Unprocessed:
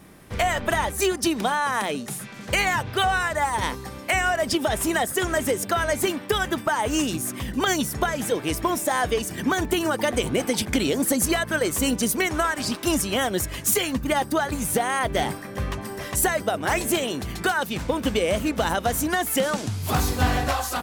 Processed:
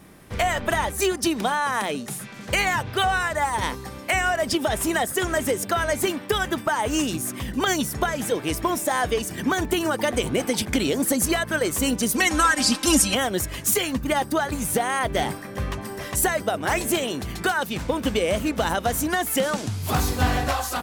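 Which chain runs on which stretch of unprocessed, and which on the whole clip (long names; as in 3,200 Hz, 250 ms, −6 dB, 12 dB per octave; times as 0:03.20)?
0:12.14–0:13.15: low-pass filter 8,600 Hz + high-shelf EQ 5,000 Hz +11.5 dB + comb filter 3.8 ms, depth 95%
whole clip: no processing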